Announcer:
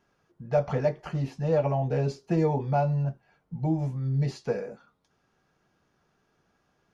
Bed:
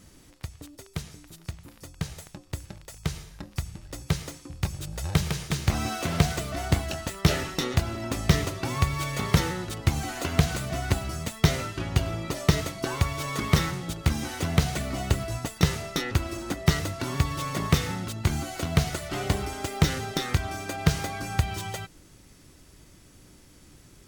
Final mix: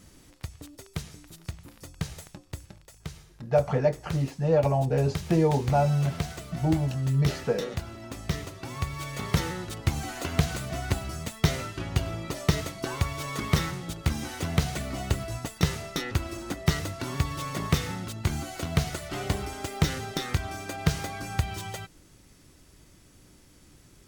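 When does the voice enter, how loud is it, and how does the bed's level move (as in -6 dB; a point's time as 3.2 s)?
3.00 s, +2.0 dB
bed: 2.21 s -0.5 dB
3.02 s -9 dB
8.5 s -9 dB
9.56 s -2.5 dB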